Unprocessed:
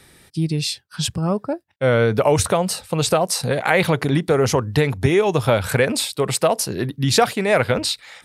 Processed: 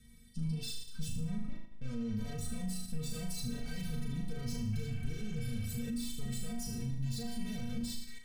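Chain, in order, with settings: valve stage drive 27 dB, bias 0.55; resonant low shelf 240 Hz +7.5 dB, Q 1.5; inharmonic resonator 230 Hz, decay 0.29 s, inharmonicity 0.008; on a send: flutter echo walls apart 6.5 m, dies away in 0.66 s; on the sum: peak limiter -32 dBFS, peak gain reduction 7 dB; amplifier tone stack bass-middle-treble 10-0-1; in parallel at +1 dB: level held to a coarse grid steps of 22 dB; on the sum: spectral replace 4.76–5.76 s, 540–3400 Hz after; trim +17.5 dB

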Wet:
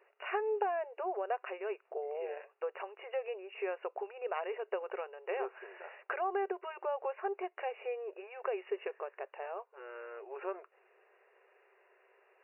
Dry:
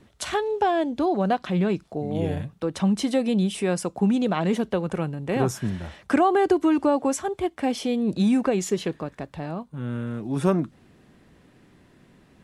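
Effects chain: compression, threshold -24 dBFS, peak gain reduction 9.5 dB; brick-wall FIR band-pass 370–2900 Hz; trim -5 dB

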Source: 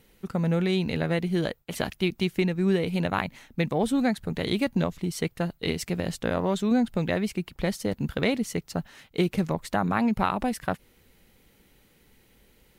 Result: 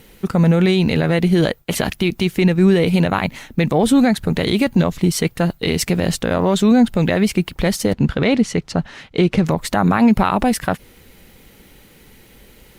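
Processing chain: 7.93–9.46 s: distance through air 81 m; loudness maximiser +18 dB; trim -4.5 dB; Opus 64 kbps 48 kHz

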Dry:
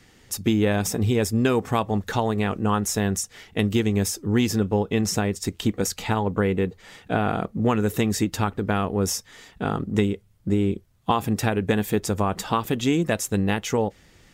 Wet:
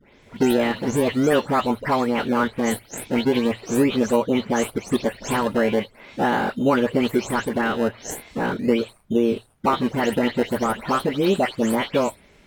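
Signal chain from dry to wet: delay that grows with frequency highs late, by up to 258 ms; in parallel at -7.5 dB: decimation with a swept rate 30×, swing 100% 0.36 Hz; on the sum: hum notches 50/100 Hz; tape speed +15%; tone controls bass -6 dB, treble -9 dB; trim +3 dB

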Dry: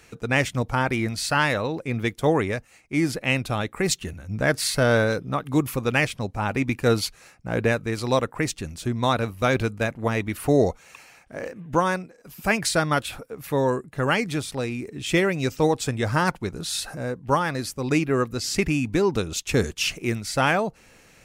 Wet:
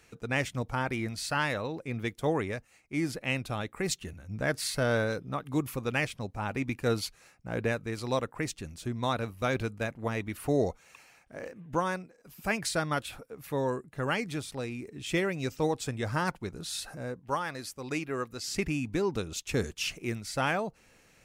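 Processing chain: 17.20–18.48 s: bass shelf 370 Hz -7.5 dB; trim -8 dB

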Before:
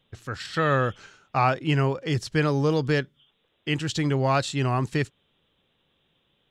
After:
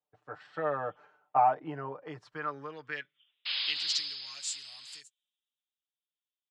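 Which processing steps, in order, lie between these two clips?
comb 6.7 ms, depth 80%; painted sound noise, 3.45–5.01 s, 510–5200 Hz -30 dBFS; compression, threshold -20 dBFS, peak gain reduction 7.5 dB; band-pass sweep 770 Hz -> 7.9 kHz, 1.91–4.56 s; three bands expanded up and down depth 40%

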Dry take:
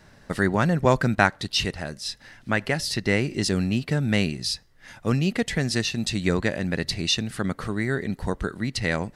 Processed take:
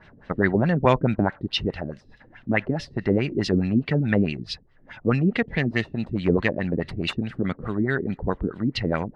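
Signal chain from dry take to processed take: 5.42–7.13 s: self-modulated delay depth 0.11 ms; LFO low-pass sine 4.7 Hz 270–3300 Hz

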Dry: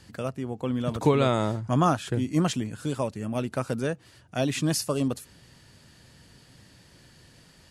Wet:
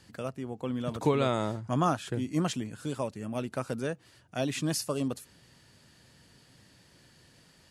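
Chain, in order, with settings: bass shelf 85 Hz -7 dB; trim -4 dB

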